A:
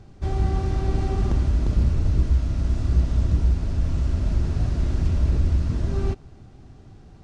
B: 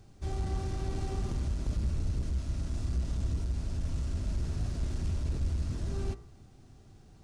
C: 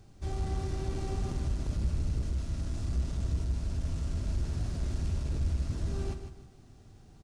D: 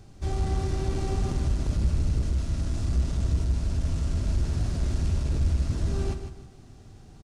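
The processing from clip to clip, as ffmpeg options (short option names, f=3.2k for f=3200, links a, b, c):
-af "asoftclip=type=tanh:threshold=-14.5dB,aemphasis=mode=production:type=50fm,bandreject=f=58.52:t=h:w=4,bandreject=f=117.04:t=h:w=4,bandreject=f=175.56:t=h:w=4,bandreject=f=234.08:t=h:w=4,bandreject=f=292.6:t=h:w=4,bandreject=f=351.12:t=h:w=4,bandreject=f=409.64:t=h:w=4,bandreject=f=468.16:t=h:w=4,bandreject=f=526.68:t=h:w=4,bandreject=f=585.2:t=h:w=4,bandreject=f=643.72:t=h:w=4,bandreject=f=702.24:t=h:w=4,bandreject=f=760.76:t=h:w=4,bandreject=f=819.28:t=h:w=4,bandreject=f=877.8:t=h:w=4,bandreject=f=936.32:t=h:w=4,bandreject=f=994.84:t=h:w=4,bandreject=f=1.05336k:t=h:w=4,bandreject=f=1.11188k:t=h:w=4,bandreject=f=1.1704k:t=h:w=4,bandreject=f=1.22892k:t=h:w=4,bandreject=f=1.28744k:t=h:w=4,bandreject=f=1.34596k:t=h:w=4,bandreject=f=1.40448k:t=h:w=4,bandreject=f=1.463k:t=h:w=4,bandreject=f=1.52152k:t=h:w=4,bandreject=f=1.58004k:t=h:w=4,bandreject=f=1.63856k:t=h:w=4,bandreject=f=1.69708k:t=h:w=4,bandreject=f=1.7556k:t=h:w=4,bandreject=f=1.81412k:t=h:w=4,bandreject=f=1.87264k:t=h:w=4,bandreject=f=1.93116k:t=h:w=4,bandreject=f=1.98968k:t=h:w=4,bandreject=f=2.0482k:t=h:w=4,bandreject=f=2.10672k:t=h:w=4,volume=-8dB"
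-af "aecho=1:1:153|306|459|612:0.355|0.11|0.0341|0.0106"
-af "aresample=32000,aresample=44100,volume=6dB"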